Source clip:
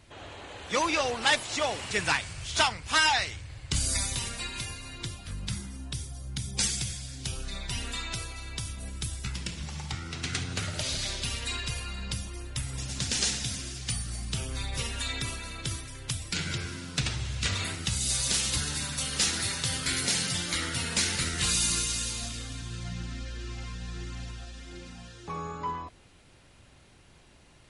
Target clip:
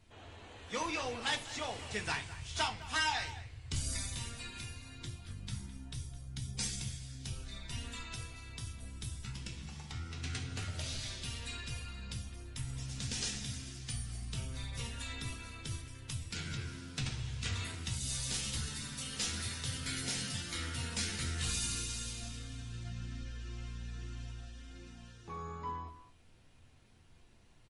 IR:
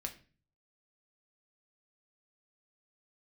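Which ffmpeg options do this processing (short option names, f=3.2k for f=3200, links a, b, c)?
-filter_complex "[0:a]lowshelf=f=89:g=6.5,asplit=2[a][b];[b]adelay=210,highpass=300,lowpass=3.4k,asoftclip=type=hard:threshold=-19.5dB,volume=-14dB[c];[a][c]amix=inputs=2:normalize=0[d];[1:a]atrim=start_sample=2205,asetrate=61740,aresample=44100[e];[d][e]afir=irnorm=-1:irlink=0,volume=-5.5dB"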